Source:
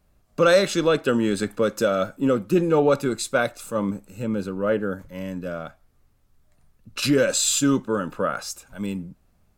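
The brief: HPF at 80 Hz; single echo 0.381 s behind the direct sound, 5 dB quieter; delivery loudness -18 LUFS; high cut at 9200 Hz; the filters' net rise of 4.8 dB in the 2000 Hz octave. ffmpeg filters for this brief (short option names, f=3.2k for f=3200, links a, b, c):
-af "highpass=80,lowpass=9.2k,equalizer=f=2k:t=o:g=7,aecho=1:1:381:0.562,volume=3dB"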